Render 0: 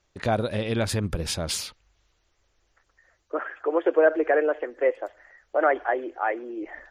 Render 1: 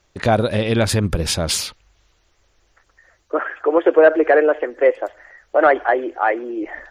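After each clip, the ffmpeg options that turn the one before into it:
ffmpeg -i in.wav -af "acontrast=45,volume=2.5dB" out.wav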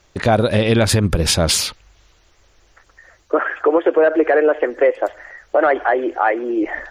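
ffmpeg -i in.wav -af "alimiter=limit=-12dB:level=0:latency=1:release=218,volume=6.5dB" out.wav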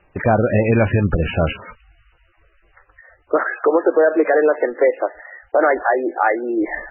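ffmpeg -i in.wav -ar 16000 -c:a libmp3lame -b:a 8k out.mp3

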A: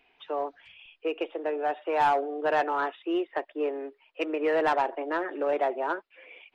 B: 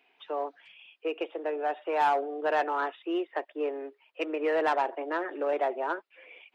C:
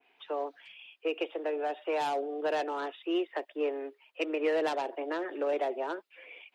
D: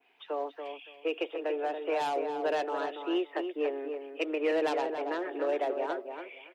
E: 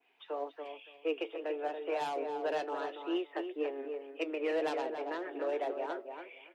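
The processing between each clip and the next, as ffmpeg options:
ffmpeg -i in.wav -af "highpass=230,volume=-1.5dB" out.wav
ffmpeg -i in.wav -filter_complex "[0:a]acrossover=split=420|590|2900[link_01][link_02][link_03][link_04];[link_03]acompressor=threshold=-39dB:ratio=6[link_05];[link_01][link_02][link_05][link_04]amix=inputs=4:normalize=0,adynamicequalizer=threshold=0.00398:dfrequency=2200:dqfactor=0.7:tfrequency=2200:tqfactor=0.7:attack=5:release=100:ratio=0.375:range=2.5:mode=boostabove:tftype=highshelf" out.wav
ffmpeg -i in.wav -filter_complex "[0:a]asplit=2[link_01][link_02];[link_02]adelay=283,lowpass=frequency=2200:poles=1,volume=-6.5dB,asplit=2[link_03][link_04];[link_04]adelay=283,lowpass=frequency=2200:poles=1,volume=0.19,asplit=2[link_05][link_06];[link_06]adelay=283,lowpass=frequency=2200:poles=1,volume=0.19[link_07];[link_01][link_03][link_05][link_07]amix=inputs=4:normalize=0" out.wav
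ffmpeg -i in.wav -af "flanger=delay=6:depth=3.2:regen=73:speed=1.9:shape=sinusoidal" out.wav

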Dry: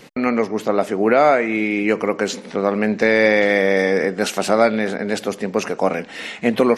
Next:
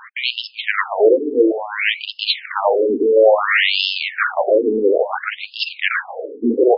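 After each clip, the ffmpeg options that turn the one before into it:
ffmpeg -i in.wav -af "aeval=exprs='0.75*sin(PI/2*3.98*val(0)/0.75)':channel_layout=same,afftfilt=real='re*between(b*sr/1024,330*pow(3800/330,0.5+0.5*sin(2*PI*0.58*pts/sr))/1.41,330*pow(3800/330,0.5+0.5*sin(2*PI*0.58*pts/sr))*1.41)':imag='im*between(b*sr/1024,330*pow(3800/330,0.5+0.5*sin(2*PI*0.58*pts/sr))/1.41,330*pow(3800/330,0.5+0.5*sin(2*PI*0.58*pts/sr))*1.41)':win_size=1024:overlap=0.75,volume=-1dB" out.wav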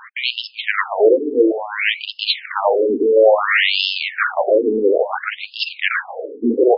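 ffmpeg -i in.wav -af anull out.wav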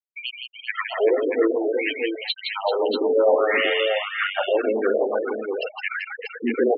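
ffmpeg -i in.wav -filter_complex "[0:a]afftfilt=real='re*gte(hypot(re,im),0.355)':imag='im*gte(hypot(re,im),0.355)':win_size=1024:overlap=0.75,asplit=2[link_01][link_02];[link_02]aecho=0:1:164|388|637:0.562|0.335|0.531[link_03];[link_01][link_03]amix=inputs=2:normalize=0,volume=-7dB" out.wav

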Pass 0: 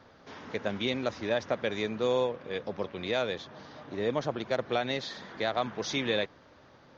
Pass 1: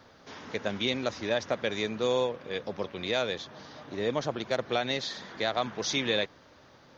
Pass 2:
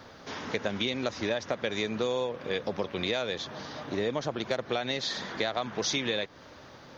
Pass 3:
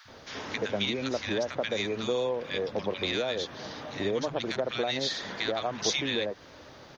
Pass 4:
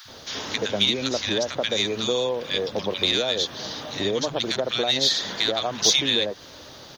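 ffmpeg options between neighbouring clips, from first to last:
ffmpeg -i in.wav -af "highshelf=frequency=4300:gain=9" out.wav
ffmpeg -i in.wav -af "acompressor=threshold=-33dB:ratio=6,volume=6.5dB" out.wav
ffmpeg -i in.wav -filter_complex "[0:a]acrossover=split=170|1200[link_01][link_02][link_03];[link_01]adelay=50[link_04];[link_02]adelay=80[link_05];[link_04][link_05][link_03]amix=inputs=3:normalize=0,volume=1.5dB" out.wav
ffmpeg -i in.wav -af "aexciter=amount=1.9:drive=7.8:freq=3100,volume=4dB" out.wav

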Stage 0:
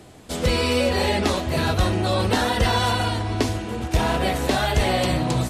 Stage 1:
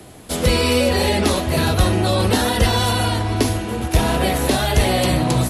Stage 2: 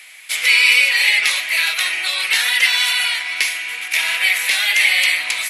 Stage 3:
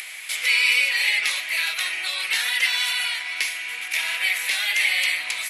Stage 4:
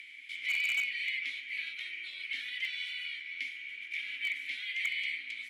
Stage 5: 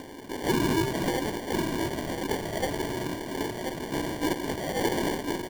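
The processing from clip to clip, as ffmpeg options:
ffmpeg -i in.wav -filter_complex "[0:a]equalizer=frequency=11000:width=5.1:gain=14.5,acrossover=split=220|540|2900[link_01][link_02][link_03][link_04];[link_03]alimiter=limit=-21.5dB:level=0:latency=1[link_05];[link_01][link_02][link_05][link_04]amix=inputs=4:normalize=0,volume=4.5dB" out.wav
ffmpeg -i in.wav -af "highpass=frequency=2200:width_type=q:width=6.1,volume=2.5dB" out.wav
ffmpeg -i in.wav -af "acompressor=mode=upward:threshold=-19dB:ratio=2.5,volume=-6.5dB" out.wav
ffmpeg -i in.wav -filter_complex "[0:a]asplit=3[link_01][link_02][link_03];[link_01]bandpass=frequency=270:width_type=q:width=8,volume=0dB[link_04];[link_02]bandpass=frequency=2290:width_type=q:width=8,volume=-6dB[link_05];[link_03]bandpass=frequency=3010:width_type=q:width=8,volume=-9dB[link_06];[link_04][link_05][link_06]amix=inputs=3:normalize=0,aeval=exprs='0.0891*(abs(mod(val(0)/0.0891+3,4)-2)-1)':channel_layout=same,volume=-3.5dB" out.wav
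ffmpeg -i in.wav -af "aecho=1:1:1036:0.501,acrusher=samples=34:mix=1:aa=0.000001,volume=7dB" out.wav

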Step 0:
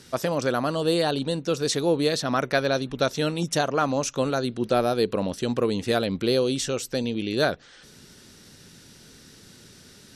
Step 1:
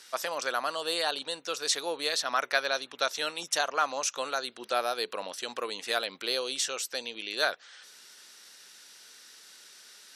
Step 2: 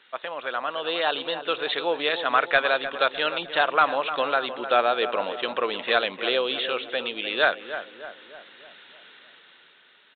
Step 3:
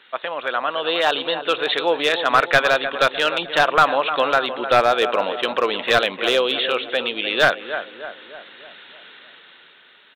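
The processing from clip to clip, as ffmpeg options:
ffmpeg -i in.wav -af "highpass=910" out.wav
ffmpeg -i in.wav -filter_complex "[0:a]dynaudnorm=framelen=110:gausssize=17:maxgain=9dB,aresample=8000,volume=9.5dB,asoftclip=hard,volume=-9.5dB,aresample=44100,asplit=2[link_01][link_02];[link_02]adelay=304,lowpass=frequency=1700:poles=1,volume=-10dB,asplit=2[link_03][link_04];[link_04]adelay=304,lowpass=frequency=1700:poles=1,volume=0.54,asplit=2[link_05][link_06];[link_06]adelay=304,lowpass=frequency=1700:poles=1,volume=0.54,asplit=2[link_07][link_08];[link_08]adelay=304,lowpass=frequency=1700:poles=1,volume=0.54,asplit=2[link_09][link_10];[link_10]adelay=304,lowpass=frequency=1700:poles=1,volume=0.54,asplit=2[link_11][link_12];[link_12]adelay=304,lowpass=frequency=1700:poles=1,volume=0.54[link_13];[link_01][link_03][link_05][link_07][link_09][link_11][link_13]amix=inputs=7:normalize=0" out.wav
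ffmpeg -i in.wav -af "aeval=exprs='clip(val(0),-1,0.168)':channel_layout=same,volume=6dB" out.wav

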